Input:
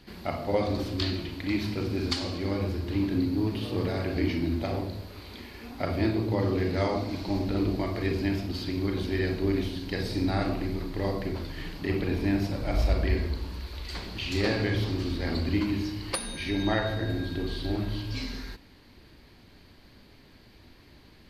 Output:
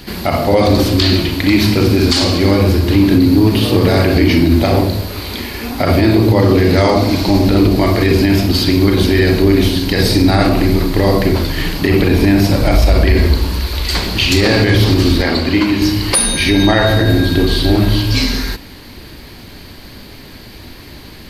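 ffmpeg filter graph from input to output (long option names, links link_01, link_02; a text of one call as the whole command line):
ffmpeg -i in.wav -filter_complex "[0:a]asettb=1/sr,asplit=3[link_01][link_02][link_03];[link_01]atrim=end=15.224[link_04];[link_02]atrim=start=15.22:end=15.82,asetpts=PTS-STARTPTS,afade=type=in:duration=0.004:curve=qsin,afade=type=out:start_time=0.596:duration=0.004:curve=qsin,lowpass=frequency=4000:poles=1,lowshelf=frequency=230:gain=-11.5[link_05];[link_03]atrim=start=15.816[link_06];[link_04][link_05]acrossfade=duration=0.004:curve1=hsin:curve2=qsin[link_07];[link_07][link_06]acrossfade=duration=0.004:curve1=qsin:curve2=hsin,highshelf=frequency=7300:gain=10,alimiter=level_in=20dB:limit=-1dB:release=50:level=0:latency=1,volume=-1dB" out.wav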